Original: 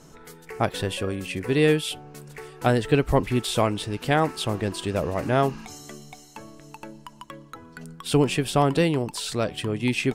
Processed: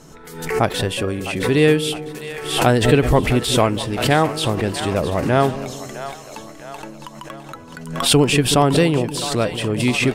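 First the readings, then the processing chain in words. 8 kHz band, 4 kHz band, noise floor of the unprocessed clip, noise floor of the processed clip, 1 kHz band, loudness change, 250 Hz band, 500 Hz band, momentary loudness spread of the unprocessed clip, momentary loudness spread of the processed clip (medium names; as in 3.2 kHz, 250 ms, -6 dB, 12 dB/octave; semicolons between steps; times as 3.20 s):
+10.0 dB, +9.0 dB, -50 dBFS, -39 dBFS, +6.0 dB, +6.0 dB, +6.0 dB, +6.0 dB, 21 LU, 20 LU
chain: two-band feedback delay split 550 Hz, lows 186 ms, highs 658 ms, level -12 dB; swell ahead of each attack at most 73 dB/s; trim +5 dB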